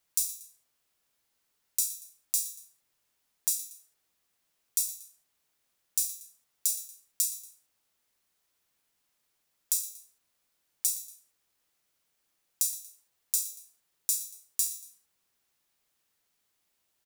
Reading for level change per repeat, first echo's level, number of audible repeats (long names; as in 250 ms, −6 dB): −8.0 dB, −15.5 dB, 2